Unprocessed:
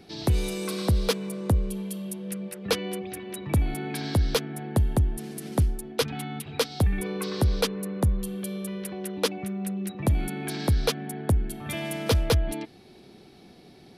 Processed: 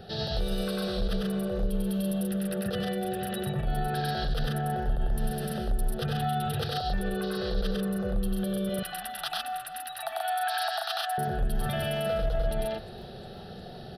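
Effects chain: 8.69–11.18 Chebyshev high-pass 660 Hz, order 8; negative-ratio compressor -28 dBFS, ratio -0.5; high shelf 2700 Hz -8.5 dB; loudspeakers at several distances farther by 33 m -1 dB, 46 m -3 dB; limiter -25 dBFS, peak gain reduction 12 dB; fixed phaser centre 1500 Hz, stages 8; echo 0.123 s -22 dB; warbling echo 0.352 s, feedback 56%, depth 198 cents, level -24 dB; gain +7 dB

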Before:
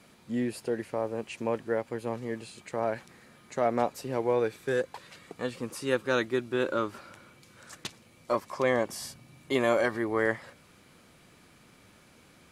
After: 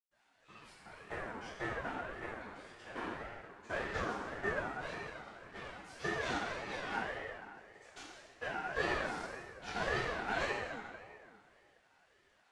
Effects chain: LFO high-pass saw up 8.1 Hz 590–3400 Hz; added harmonics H 4 -12 dB, 8 -13 dB, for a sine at -9.5 dBFS; short-mantissa float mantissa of 2-bit; LPF 8700 Hz 24 dB/oct; bell 1100 Hz +12.5 dB 0.25 oct; reverb RT60 2.2 s, pre-delay 0.108 s; ring modulator with a swept carrier 510 Hz, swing 40%, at 1.8 Hz; gain +1.5 dB

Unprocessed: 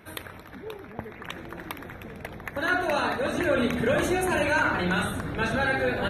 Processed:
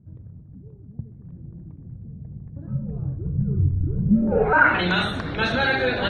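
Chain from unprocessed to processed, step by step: 2.67–4.53 frequency shift -150 Hz; low-pass sweep 140 Hz -> 4100 Hz, 4.04–4.85; gain +3 dB

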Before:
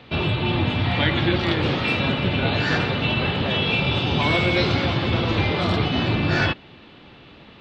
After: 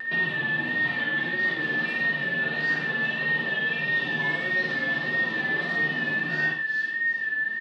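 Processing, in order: rattling part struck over -21 dBFS, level -24 dBFS; steep high-pass 150 Hz 36 dB/oct; on a send: thin delay 0.38 s, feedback 36%, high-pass 5400 Hz, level -8 dB; on the sum: compressor 6:1, threshold -28 dBFS, peak gain reduction 11 dB; whine 1800 Hz -23 dBFS; vibrato 1.6 Hz 49 cents; notch 2300 Hz, Q 25; doubler 13 ms -5.5 dB; loudspeakers at several distances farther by 18 m -5 dB, 36 m -8 dB; gain -6 dB

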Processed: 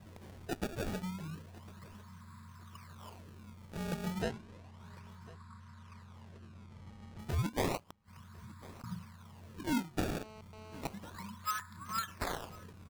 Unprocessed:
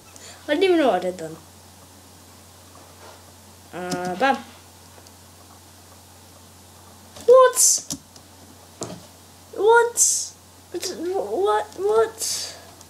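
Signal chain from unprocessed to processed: Wiener smoothing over 15 samples; FFT band-reject 230–920 Hz; compressor 4:1, threshold -32 dBFS, peak gain reduction 16 dB; decimation with a swept rate 24×, swing 160% 0.32 Hz; 4.22–7.19 air absorption 53 m; 7.79–8.84 flipped gate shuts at -39 dBFS, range -38 dB; feedback echo 1.05 s, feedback 32%, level -21 dB; 10.13–10.81 GSM buzz -52 dBFS; gain -1 dB

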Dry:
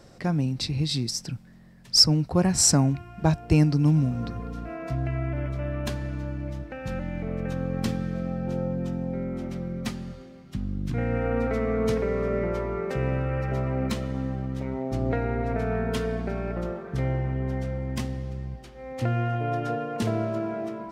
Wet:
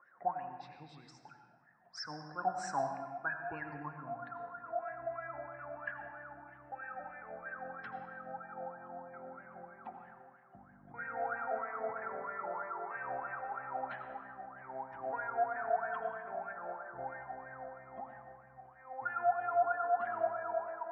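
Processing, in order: wah 3.1 Hz 690–1700 Hz, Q 20; spectral gate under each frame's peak -30 dB strong; bell 4500 Hz -6.5 dB 0.27 oct; de-hum 84.96 Hz, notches 29; on a send: reverb RT60 1.3 s, pre-delay 77 ms, DRR 6.5 dB; on the sum: gain +9.5 dB

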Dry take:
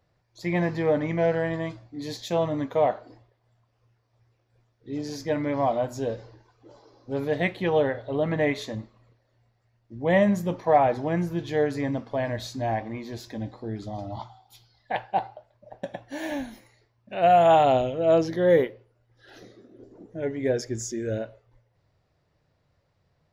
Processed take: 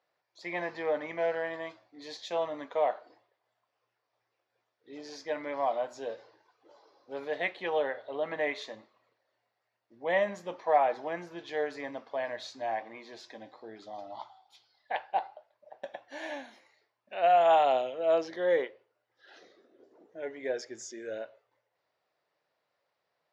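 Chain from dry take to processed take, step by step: BPF 550–5200 Hz; gain -3.5 dB

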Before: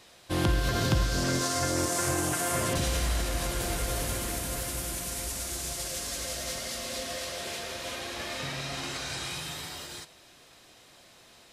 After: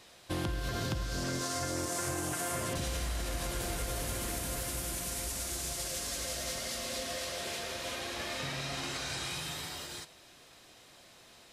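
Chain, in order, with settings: compressor 5:1, threshold -30 dBFS, peak gain reduction 9.5 dB; gain -1.5 dB

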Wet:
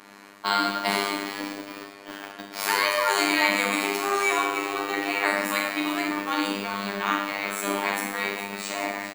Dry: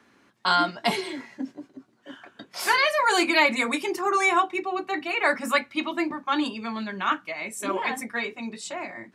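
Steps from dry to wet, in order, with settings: per-bin compression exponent 0.6; high shelf 8600 Hz +10.5 dB; on a send: frequency-shifting echo 0.411 s, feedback 52%, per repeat +140 Hz, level -12 dB; on the sum: Schroeder reverb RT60 0.87 s, combs from 26 ms, DRR -0.5 dB; in parallel at -6 dB: sample gate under -22.5 dBFS; on the sum: robotiser 100 Hz; gain -9 dB

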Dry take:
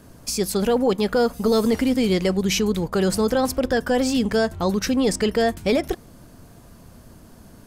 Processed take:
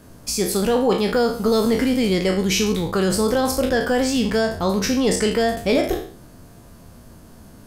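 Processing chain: spectral trails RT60 0.49 s

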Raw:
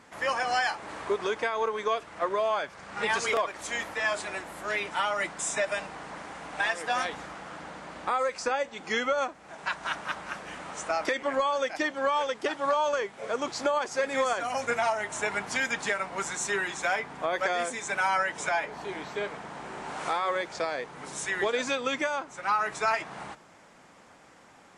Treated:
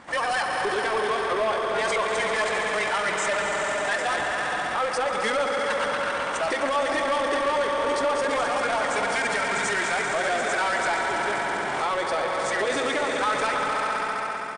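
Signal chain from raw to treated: LPF 5100 Hz 12 dB/oct; on a send: swelling echo 0.112 s, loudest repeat 5, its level -10 dB; on the sum: careless resampling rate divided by 3×, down none, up zero stuff; low shelf 68 Hz +5 dB; notch 2500 Hz, Q 27; doubler 14 ms -13.5 dB; tempo 1.7×; in parallel at 0 dB: limiter -13 dBFS, peak gain reduction 9.5 dB; on the sum: soft clip -12.5 dBFS, distortion -12 dB; low shelf 230 Hz -3.5 dB; gain +2 dB; MP2 128 kbps 32000 Hz

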